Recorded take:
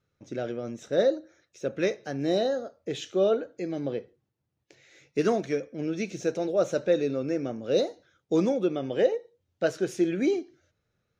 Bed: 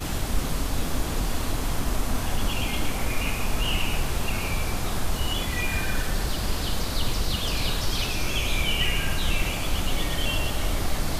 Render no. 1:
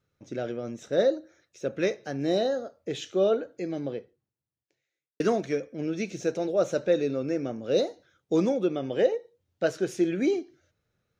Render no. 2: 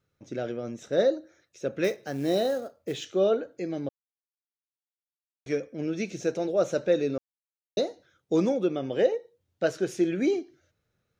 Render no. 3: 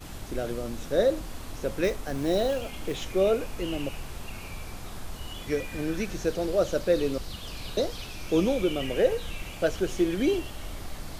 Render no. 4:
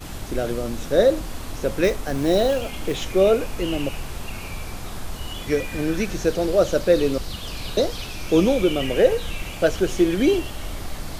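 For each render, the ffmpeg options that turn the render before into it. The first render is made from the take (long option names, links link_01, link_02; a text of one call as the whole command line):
ffmpeg -i in.wav -filter_complex "[0:a]asplit=2[link_01][link_02];[link_01]atrim=end=5.2,asetpts=PTS-STARTPTS,afade=type=out:start_time=3.74:duration=1.46:curve=qua[link_03];[link_02]atrim=start=5.2,asetpts=PTS-STARTPTS,afade=type=in:duration=0.004:curve=hsin[link_04];[link_03][link_04]concat=n=2:v=0:a=1" out.wav
ffmpeg -i in.wav -filter_complex "[0:a]asettb=1/sr,asplit=3[link_01][link_02][link_03];[link_01]atrim=end=1.844[link_04];[link_02]atrim=start=1.84:end=3.05,asetpts=PTS-STARTPTS,afade=type=in:duration=0.004:curve=qsin,afade=type=out:start_time=1.206:duration=0.004:curve=qsin,acrusher=bits=6:mode=log:mix=0:aa=0.000001[link_05];[link_03]atrim=start=3.046[link_06];[link_04][link_05]acrossfade=duration=0.004:curve1=hsin:curve2=qsin[link_07];[link_07][link_06]acrossfade=duration=0.004:curve1=qsin:curve2=hsin,asplit=5[link_08][link_09][link_10][link_11][link_12];[link_08]atrim=end=3.89,asetpts=PTS-STARTPTS,afade=type=out:start_time=3.886:duration=0.004:curve=hsin[link_13];[link_09]atrim=start=3.89:end=5.46,asetpts=PTS-STARTPTS,volume=0[link_14];[link_10]atrim=start=5.46:end=7.18,asetpts=PTS-STARTPTS,afade=type=in:duration=0.004:curve=hsin,afade=type=out:start_time=1.716:duration=0.004:curve=hsin[link_15];[link_11]atrim=start=7.18:end=7.77,asetpts=PTS-STARTPTS,volume=0[link_16];[link_12]atrim=start=7.77,asetpts=PTS-STARTPTS,afade=type=in:duration=0.004:curve=hsin[link_17];[link_13][link_14][link_15][link_16][link_17]concat=n=5:v=0:a=1" out.wav
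ffmpeg -i in.wav -i bed.wav -filter_complex "[1:a]volume=-12dB[link_01];[0:a][link_01]amix=inputs=2:normalize=0" out.wav
ffmpeg -i in.wav -af "volume=6.5dB" out.wav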